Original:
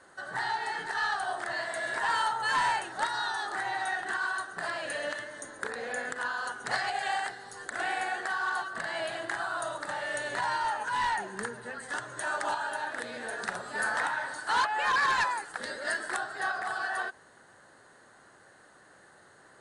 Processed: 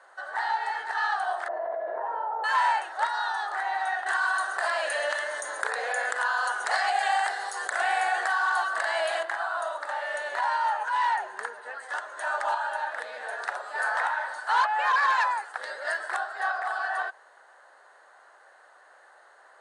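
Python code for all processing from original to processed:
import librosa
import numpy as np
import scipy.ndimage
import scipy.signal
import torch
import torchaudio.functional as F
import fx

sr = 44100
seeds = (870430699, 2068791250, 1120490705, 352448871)

y = fx.chain(x, sr, fx.lowpass_res(hz=510.0, q=1.7),
    fx.env_flatten(amount_pct=100), at=(1.48, 2.44))
y = fx.chain(y, sr, fx.high_shelf(hz=5700.0, db=11.5),
    fx.env_flatten(amount_pct=50), at=(4.06, 9.23))
y = scipy.signal.sosfilt(scipy.signal.butter(4, 650.0, 'highpass', fs=sr, output='sos'), y)
y = fx.tilt_eq(y, sr, slope=-3.5)
y = y * 10.0 ** (4.5 / 20.0)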